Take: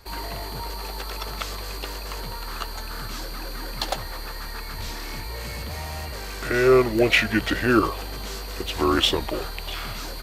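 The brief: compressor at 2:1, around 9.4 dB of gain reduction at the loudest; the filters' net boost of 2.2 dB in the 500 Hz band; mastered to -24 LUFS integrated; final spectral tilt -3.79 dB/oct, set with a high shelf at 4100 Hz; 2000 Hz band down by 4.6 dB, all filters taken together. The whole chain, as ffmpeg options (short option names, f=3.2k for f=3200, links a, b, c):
-af "equalizer=f=500:t=o:g=3.5,equalizer=f=2k:t=o:g=-7.5,highshelf=f=4.1k:g=5,acompressor=threshold=-28dB:ratio=2,volume=6.5dB"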